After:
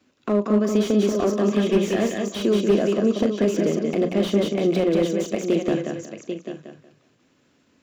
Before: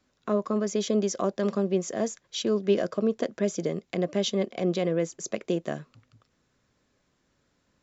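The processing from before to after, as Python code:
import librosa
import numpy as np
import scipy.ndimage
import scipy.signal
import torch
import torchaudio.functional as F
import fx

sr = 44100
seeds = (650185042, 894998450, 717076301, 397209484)

p1 = fx.doubler(x, sr, ms=39.0, db=-12.5)
p2 = p1 + 10.0 ** (-11.0 / 20.0) * np.pad(p1, (int(792 * sr / 1000.0), 0))[:len(p1)]
p3 = fx.level_steps(p2, sr, step_db=18)
p4 = p2 + (p3 * librosa.db_to_amplitude(-2.0))
p5 = fx.peak_eq(p4, sr, hz=2700.0, db=6.5, octaves=0.48)
p6 = fx.hum_notches(p5, sr, base_hz=60, count=3)
p7 = p6 + fx.echo_feedback(p6, sr, ms=184, feedback_pct=25, wet_db=-5.0, dry=0)
p8 = fx.spec_box(p7, sr, start_s=1.51, length_s=0.74, low_hz=1600.0, high_hz=3900.0, gain_db=9)
p9 = scipy.signal.sosfilt(scipy.signal.butter(2, 87.0, 'highpass', fs=sr, output='sos'), p8)
p10 = fx.peak_eq(p9, sr, hz=280.0, db=7.0, octaves=1.1)
y = fx.slew_limit(p10, sr, full_power_hz=93.0)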